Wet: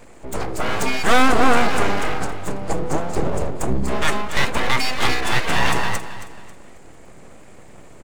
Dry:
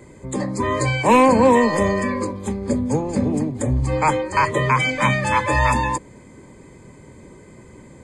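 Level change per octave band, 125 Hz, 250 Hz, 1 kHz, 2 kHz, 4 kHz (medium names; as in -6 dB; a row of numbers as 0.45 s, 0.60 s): -5.5 dB, -5.0 dB, -2.5 dB, +1.0 dB, +6.5 dB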